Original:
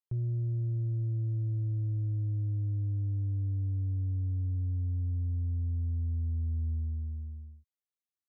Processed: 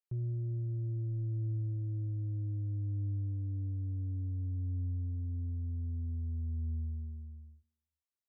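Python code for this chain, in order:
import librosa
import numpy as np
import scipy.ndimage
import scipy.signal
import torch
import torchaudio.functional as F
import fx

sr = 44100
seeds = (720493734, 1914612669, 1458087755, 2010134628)

p1 = fx.dynamic_eq(x, sr, hz=270.0, q=0.72, threshold_db=-47.0, ratio=4.0, max_db=6)
p2 = p1 + fx.echo_feedback(p1, sr, ms=99, feedback_pct=57, wet_db=-22, dry=0)
y = p2 * librosa.db_to_amplitude(-6.0)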